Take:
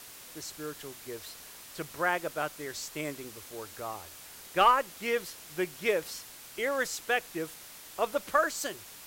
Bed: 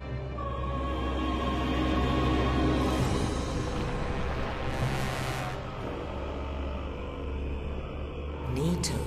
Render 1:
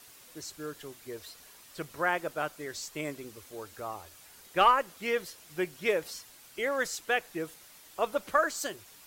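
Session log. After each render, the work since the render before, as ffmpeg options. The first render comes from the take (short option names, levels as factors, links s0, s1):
-af "afftdn=nr=7:nf=-49"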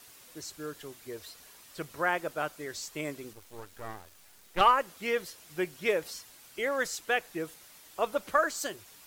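-filter_complex "[0:a]asettb=1/sr,asplit=3[s0][s1][s2];[s0]atrim=end=3.334[s3];[s1]atrim=start=3.33:end=4.61,asetpts=PTS-STARTPTS,afade=t=in:d=0.004:c=qsin,afade=t=out:st=1.276:d=0.004:c=qsin,aeval=exprs='max(val(0),0)':c=same[s4];[s2]atrim=start=4.606[s5];[s3][s4]acrossfade=d=0.004:c1=hsin:c2=qsin[s6];[s6][s5]acrossfade=d=0.004:c1=qsin:c2=hsin"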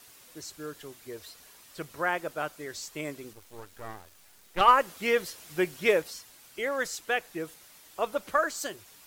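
-filter_complex "[0:a]asplit=3[s0][s1][s2];[s0]atrim=end=4.682[s3];[s1]atrim=start=4.678:end=6.022,asetpts=PTS-STARTPTS,volume=1.68[s4];[s2]atrim=start=6.018[s5];[s3][s4]acrossfade=d=0.004:c1=hsin:c2=hsin[s6];[s6][s5]acrossfade=d=0.004:c1=hsin:c2=hsin"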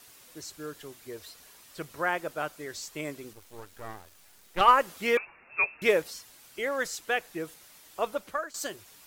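-filter_complex "[0:a]asettb=1/sr,asplit=3[s0][s1][s2];[s0]atrim=end=5.174[s3];[s1]atrim=start=5.17:end=5.82,asetpts=PTS-STARTPTS,afade=t=in:d=0.004:c=qsin,afade=t=out:st=0.646:d=0.004:c=qsin,lowpass=f=2400:t=q:w=0.5098,lowpass=f=2400:t=q:w=0.6013,lowpass=f=2400:t=q:w=0.9,lowpass=f=2400:t=q:w=2.563,afreqshift=-2800[s4];[s2]atrim=start=5.816[s5];[s3][s4]acrossfade=d=0.004:c1=hsin:c2=qsin[s6];[s6][s5]acrossfade=d=0.004:c1=qsin:c2=hsin,asplit=2[s7][s8];[s7]atrim=end=8.54,asetpts=PTS-STARTPTS,afade=t=out:st=8.06:d=0.48:silence=0.177828[s9];[s8]atrim=start=8.54,asetpts=PTS-STARTPTS,afade=t=in:d=0.004:c=hsin:silence=0.177828[s10];[s9][s10]concat=n=2:v=0:a=1"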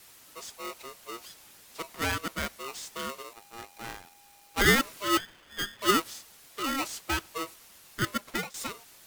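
-filter_complex "[0:a]acrossover=split=880|1100[s0][s1][s2];[s2]asoftclip=type=tanh:threshold=0.0251[s3];[s0][s1][s3]amix=inputs=3:normalize=0,aeval=exprs='val(0)*sgn(sin(2*PI*810*n/s))':c=same"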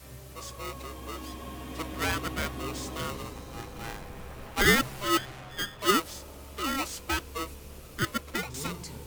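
-filter_complex "[1:a]volume=0.266[s0];[0:a][s0]amix=inputs=2:normalize=0"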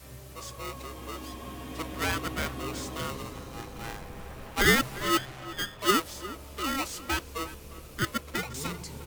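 -filter_complex "[0:a]asplit=2[s0][s1];[s1]adelay=355.7,volume=0.178,highshelf=f=4000:g=-8[s2];[s0][s2]amix=inputs=2:normalize=0"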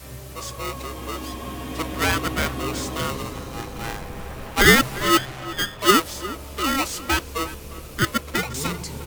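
-af "volume=2.51"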